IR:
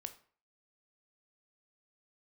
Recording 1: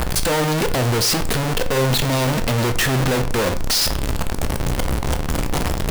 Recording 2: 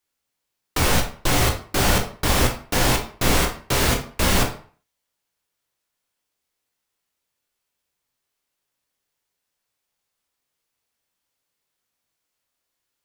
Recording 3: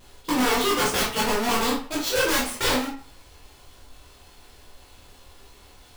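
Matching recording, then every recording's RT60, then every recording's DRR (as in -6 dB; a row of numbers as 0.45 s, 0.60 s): 1; 0.45 s, 0.45 s, 0.45 s; 8.0 dB, 2.0 dB, -4.5 dB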